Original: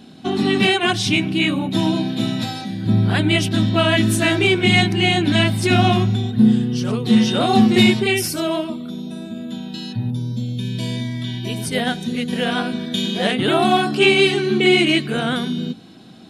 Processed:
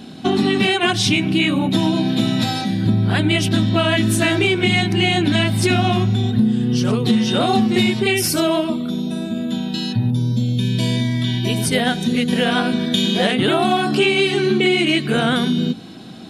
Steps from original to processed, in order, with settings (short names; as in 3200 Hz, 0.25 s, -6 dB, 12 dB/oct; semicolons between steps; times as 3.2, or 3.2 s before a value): compressor, threshold -20 dBFS, peak gain reduction 11.5 dB; gain +6.5 dB